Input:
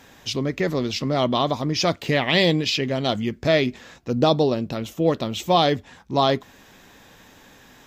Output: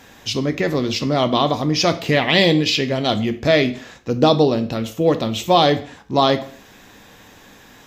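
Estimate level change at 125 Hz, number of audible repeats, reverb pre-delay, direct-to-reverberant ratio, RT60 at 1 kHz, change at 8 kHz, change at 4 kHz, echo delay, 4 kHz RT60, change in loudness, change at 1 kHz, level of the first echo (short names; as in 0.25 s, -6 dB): +3.0 dB, none, 3 ms, 8.5 dB, 0.50 s, +4.0 dB, +4.0 dB, none, 0.45 s, +4.0 dB, +4.0 dB, none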